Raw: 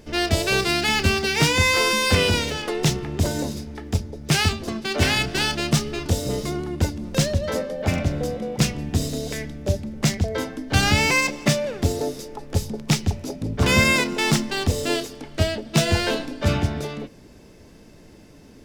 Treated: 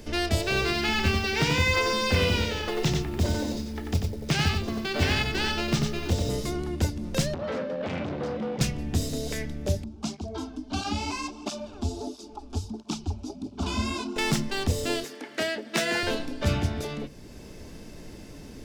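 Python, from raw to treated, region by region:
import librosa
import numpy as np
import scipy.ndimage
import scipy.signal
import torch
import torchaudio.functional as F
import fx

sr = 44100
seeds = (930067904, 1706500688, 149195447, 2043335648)

y = fx.chain(x, sr, fx.lowpass(hz=5600.0, slope=12),
    fx.quant_companded(bits=6),
    fx.echo_single(ms=91, db=-4.5), at=(0.41, 6.3))
y = fx.chain(y, sr, fx.low_shelf(hz=450.0, db=7.0),
    fx.overload_stage(gain_db=23.0),
    fx.bandpass_edges(low_hz=190.0, high_hz=3300.0), at=(7.34, 8.61))
y = fx.chain(y, sr, fx.air_absorb(metres=78.0),
    fx.fixed_phaser(hz=510.0, stages=6),
    fx.flanger_cancel(hz=1.5, depth_ms=6.9), at=(9.84, 14.16))
y = fx.chain(y, sr, fx.highpass(hz=240.0, slope=24),
    fx.peak_eq(hz=1800.0, db=8.5, octaves=0.69), at=(15.03, 16.03))
y = fx.low_shelf(y, sr, hz=88.0, db=8.0)
y = fx.hum_notches(y, sr, base_hz=50, count=3)
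y = fx.band_squash(y, sr, depth_pct=40)
y = F.gain(torch.from_numpy(y), -5.5).numpy()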